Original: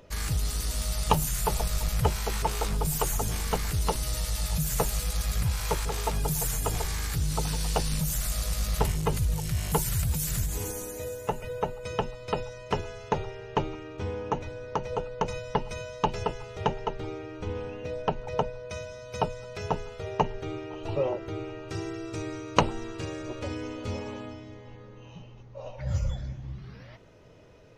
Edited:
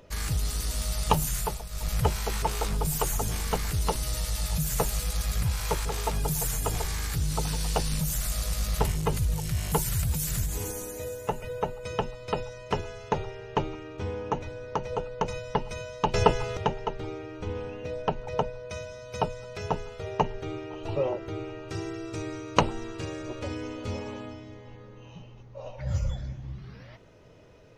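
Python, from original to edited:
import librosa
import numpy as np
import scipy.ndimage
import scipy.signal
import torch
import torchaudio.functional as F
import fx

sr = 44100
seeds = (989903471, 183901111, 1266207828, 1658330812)

y = fx.edit(x, sr, fx.fade_down_up(start_s=1.37, length_s=0.56, db=-11.0, fade_s=0.24),
    fx.clip_gain(start_s=16.14, length_s=0.43, db=9.5), tone=tone)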